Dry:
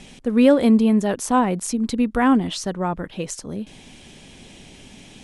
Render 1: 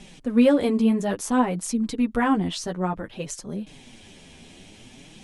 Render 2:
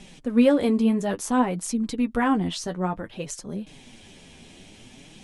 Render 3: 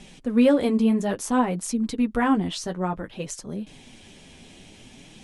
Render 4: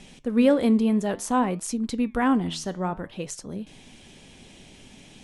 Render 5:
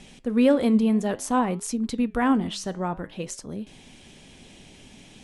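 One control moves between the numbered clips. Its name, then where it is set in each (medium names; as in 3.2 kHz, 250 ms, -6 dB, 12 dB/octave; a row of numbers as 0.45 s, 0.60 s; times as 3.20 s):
flange, regen: +4%, +29%, -24%, +85%, -86%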